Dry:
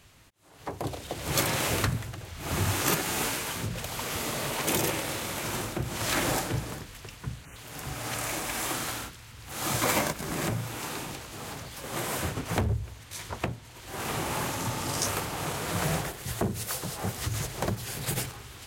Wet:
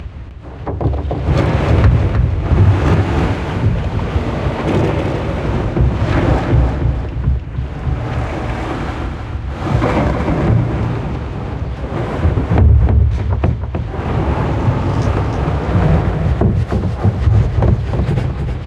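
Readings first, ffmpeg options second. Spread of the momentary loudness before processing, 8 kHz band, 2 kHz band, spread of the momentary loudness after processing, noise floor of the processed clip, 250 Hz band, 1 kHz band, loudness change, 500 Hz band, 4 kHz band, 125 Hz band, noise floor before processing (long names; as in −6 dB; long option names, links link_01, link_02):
13 LU, below −10 dB, +6.5 dB, 10 LU, −26 dBFS, +16.5 dB, +10.5 dB, +14.5 dB, +14.0 dB, 0.0 dB, +21.0 dB, −49 dBFS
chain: -af "lowpass=2800,tiltshelf=frequency=860:gain=6,acompressor=mode=upward:threshold=-34dB:ratio=2.5,equalizer=frequency=65:width=1.3:gain=11.5,aecho=1:1:309|618|927|1236|1545:0.501|0.2|0.0802|0.0321|0.0128,alimiter=level_in=11dB:limit=-1dB:release=50:level=0:latency=1,volume=-1dB"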